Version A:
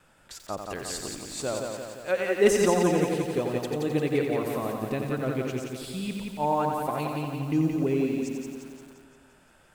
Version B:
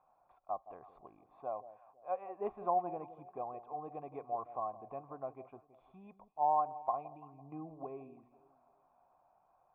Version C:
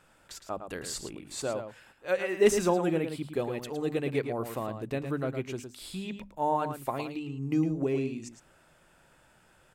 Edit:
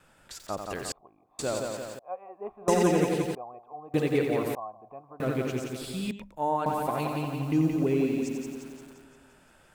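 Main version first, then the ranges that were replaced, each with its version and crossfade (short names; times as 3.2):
A
0.92–1.39 from B
1.99–2.68 from B
3.35–3.94 from B
4.55–5.2 from B
6.11–6.66 from C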